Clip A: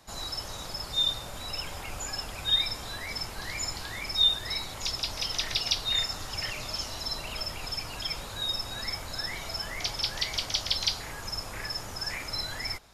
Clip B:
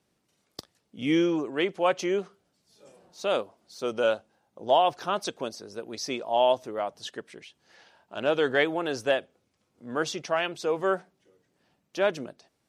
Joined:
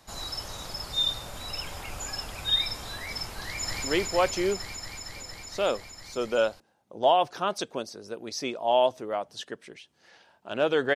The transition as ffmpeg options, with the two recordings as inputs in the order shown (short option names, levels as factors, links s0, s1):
-filter_complex "[0:a]apad=whole_dur=10.95,atrim=end=10.95,atrim=end=3.842[s0];[1:a]atrim=start=1.498:end=8.61[s1];[s0][s1]acrossfade=d=0.004:c1=hsin:c2=hsin,asplit=2[s2][s3];[s3]afade=t=in:st=3.44:d=0.01,afade=t=out:st=3.84:d=0.01,aecho=0:1:230|460|690|920|1150|1380|1610|1840|2070|2300|2530|2760:0.891251|0.757563|0.643929|0.547339|0.465239|0.395453|0.336135|0.285715|0.242857|0.206429|0.175464|0.149145[s4];[s2][s4]amix=inputs=2:normalize=0"